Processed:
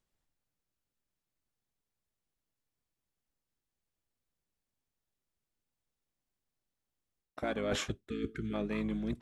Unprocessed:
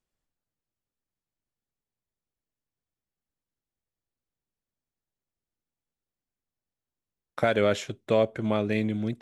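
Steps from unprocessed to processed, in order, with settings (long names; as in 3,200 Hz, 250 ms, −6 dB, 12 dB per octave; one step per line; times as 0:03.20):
reversed playback
downward compressor 12 to 1, threshold −31 dBFS, peak gain reduction 14 dB
reversed playback
pitch-shifted copies added −12 semitones −5 dB
time-frequency box erased 0:08.09–0:08.54, 460–1,200 Hz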